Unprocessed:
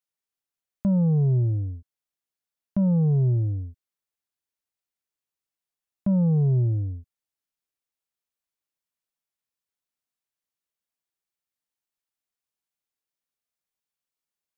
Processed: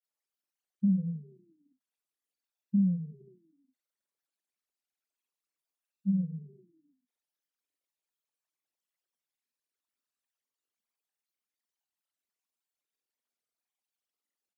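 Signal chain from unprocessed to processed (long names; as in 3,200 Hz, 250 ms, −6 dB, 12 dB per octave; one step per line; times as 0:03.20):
spectral envelope exaggerated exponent 3
granular cloud, grains 20 per second, spray 39 ms, pitch spread up and down by 0 semitones
linear-phase brick-wall high-pass 180 Hz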